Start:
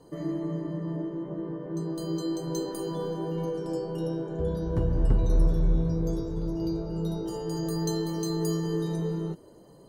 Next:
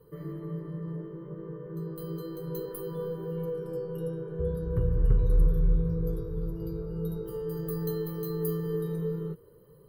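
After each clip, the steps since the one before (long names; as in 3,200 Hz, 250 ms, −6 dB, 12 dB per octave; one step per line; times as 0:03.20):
drawn EQ curve 150 Hz 0 dB, 290 Hz −16 dB, 460 Hz +3 dB, 690 Hz −21 dB, 1,200 Hz −2 dB, 4,100 Hz −13 dB, 6,800 Hz −25 dB, 13,000 Hz +9 dB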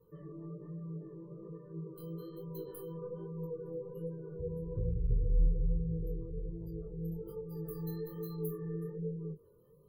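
gate on every frequency bin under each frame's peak −30 dB strong
chorus effect 1.2 Hz, delay 17 ms, depth 7.2 ms
level −5 dB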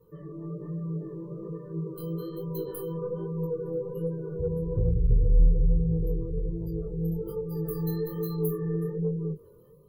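automatic gain control gain up to 4 dB
in parallel at −6.5 dB: soft clipping −24.5 dBFS, distortion −11 dB
on the sum: level +2.5 dB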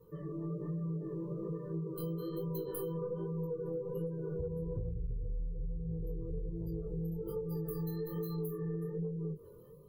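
downward compressor 16 to 1, threshold −34 dBFS, peak gain reduction 20 dB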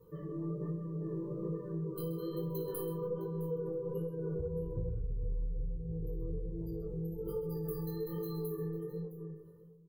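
fade-out on the ending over 1.24 s
on a send: multi-tap delay 57/130/661 ms −11/−12.5/−17.5 dB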